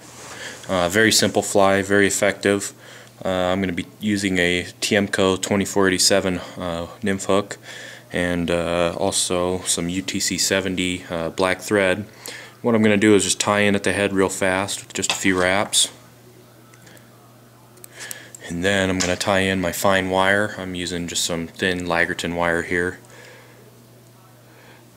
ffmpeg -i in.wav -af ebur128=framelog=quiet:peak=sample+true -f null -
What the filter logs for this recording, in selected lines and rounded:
Integrated loudness:
  I:         -19.9 LUFS
  Threshold: -30.9 LUFS
Loudness range:
  LRA:         5.0 LU
  Threshold: -40.9 LUFS
  LRA low:   -23.8 LUFS
  LRA high:  -18.9 LUFS
Sample peak:
  Peak:       -1.4 dBFS
True peak:
  Peak:       -1.4 dBFS